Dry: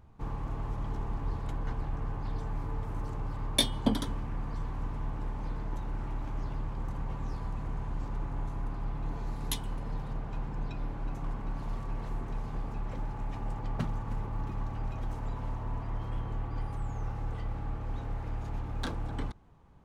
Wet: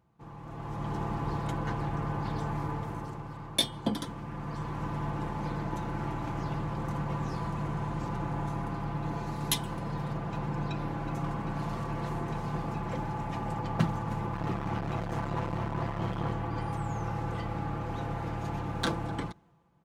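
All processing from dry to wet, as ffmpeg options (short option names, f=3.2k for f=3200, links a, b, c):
-filter_complex "[0:a]asettb=1/sr,asplit=3[a][b][c];[a]atrim=end=14.334[d];[b]atrim=start=14.33:end=16.32,asetpts=PTS-STARTPTS,afade=t=in:d=0.004:c=qsin,afade=t=out:st=1.986:d=0.004:c=qsin,highshelf=f=7.8k:g=-7.5,acontrast=20,asoftclip=type=hard:threshold=-32dB[e];[c]atrim=start=16.316[f];[d][e]acrossfade=d=0.004:c1=hsin:c2=qsin[g];[g][f]acrossfade=d=0.004:c1=qsin:c2=hsin,highpass=99,aecho=1:1:5.9:0.5,dynaudnorm=f=110:g=13:m=15.5dB,volume=-8.5dB"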